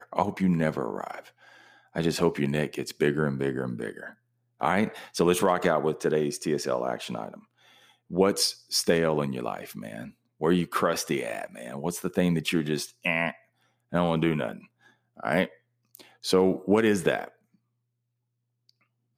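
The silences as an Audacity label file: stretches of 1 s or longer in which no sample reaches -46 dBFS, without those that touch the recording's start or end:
17.290000	18.690000	silence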